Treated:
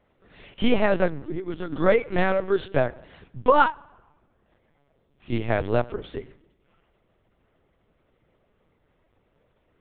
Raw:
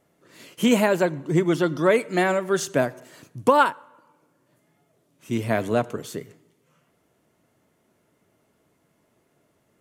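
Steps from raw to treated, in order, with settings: 1.19–1.72 s: compression 3:1, threshold -31 dBFS, peak gain reduction 12.5 dB; LPC vocoder at 8 kHz pitch kept

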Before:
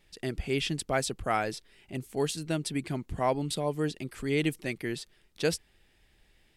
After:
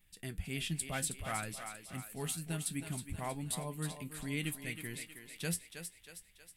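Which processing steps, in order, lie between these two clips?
FFT filter 190 Hz 0 dB, 390 Hz -13 dB, 11 kHz +11 dB; flange 0.65 Hz, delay 9.7 ms, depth 2.4 ms, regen +58%; peaking EQ 5.3 kHz -12.5 dB 1.1 oct; on a send: thinning echo 318 ms, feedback 53%, high-pass 320 Hz, level -7.5 dB

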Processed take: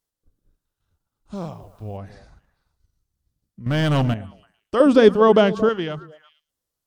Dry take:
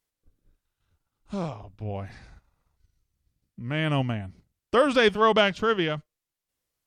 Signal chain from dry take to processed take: peaking EQ 2.3 kHz -7 dB 0.81 oct; repeats whose band climbs or falls 112 ms, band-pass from 190 Hz, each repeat 1.4 oct, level -11.5 dB; 1.34–1.96 s: added noise white -68 dBFS; 3.66–4.14 s: waveshaping leveller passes 3; 4.80–5.69 s: peaking EQ 300 Hz +11.5 dB 2.2 oct

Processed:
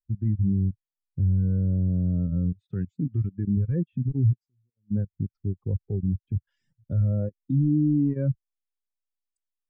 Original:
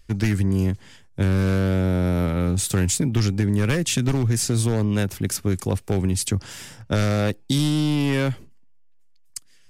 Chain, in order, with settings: low-pass that closes with the level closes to 2.1 kHz, closed at -20.5 dBFS; 2.53–3.57 s: tilt EQ +2 dB/octave; compression 12:1, threshold -23 dBFS, peak gain reduction 8.5 dB; reverb removal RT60 0.5 s; level held to a coarse grid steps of 15 dB; vibrato 0.5 Hz 24 cents; 4.33–4.91 s: pre-emphasis filter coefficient 0.9; spectral contrast expander 2.5:1; trim +4.5 dB

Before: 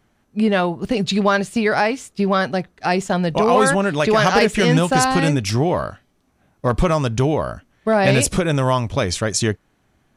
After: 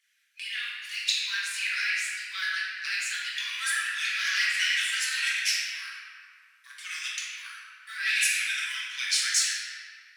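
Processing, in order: de-esser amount 30%; phaser 1.8 Hz, delay 3.1 ms, feedback 67%; compression, threshold -15 dBFS, peak gain reduction 11.5 dB; steep high-pass 1.7 kHz 48 dB/octave; reverberation RT60 2.4 s, pre-delay 6 ms, DRR -6.5 dB; trim -5 dB

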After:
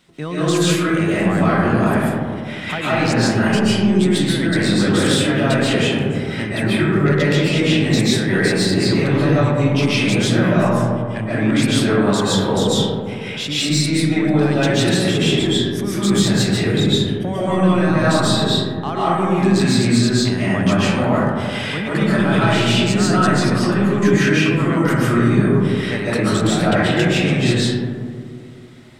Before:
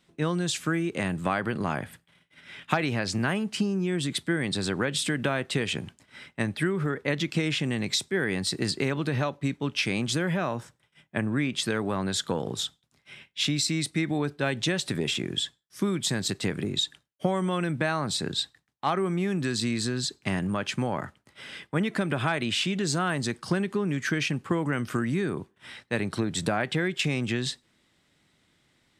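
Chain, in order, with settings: in parallel at 0 dB: compressor with a negative ratio -35 dBFS, ratio -1; on the sum: saturation -14 dBFS, distortion -22 dB; reverberation RT60 2.2 s, pre-delay 100 ms, DRR -9.5 dB; trim -1 dB

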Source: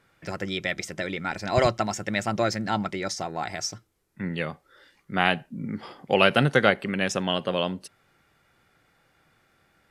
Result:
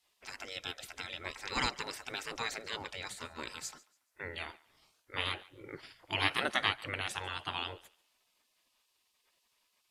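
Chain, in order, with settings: spectral gate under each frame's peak -15 dB weak; thinning echo 142 ms, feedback 28%, high-pass 570 Hz, level -21.5 dB; trim -1 dB

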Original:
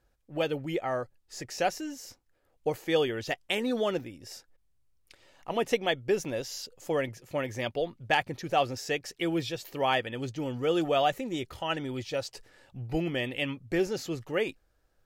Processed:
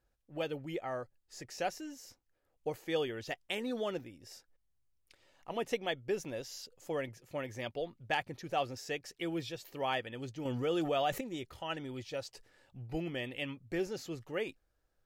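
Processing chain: 10.45–11.21 s: level flattener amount 50%; trim -7.5 dB

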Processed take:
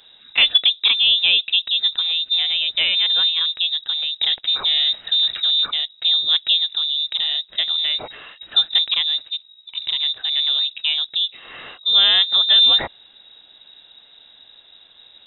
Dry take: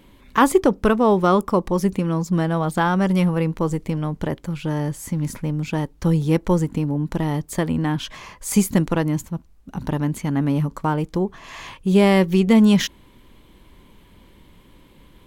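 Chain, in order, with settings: 4.21–5.67 s: waveshaping leveller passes 2; frequency inversion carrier 3.8 kHz

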